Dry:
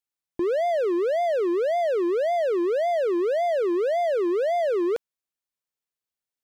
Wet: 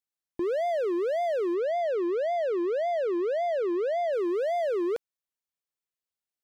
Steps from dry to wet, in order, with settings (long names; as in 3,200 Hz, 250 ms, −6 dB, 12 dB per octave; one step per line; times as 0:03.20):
0:01.54–0:04.13: high-frequency loss of the air 63 metres
level −4 dB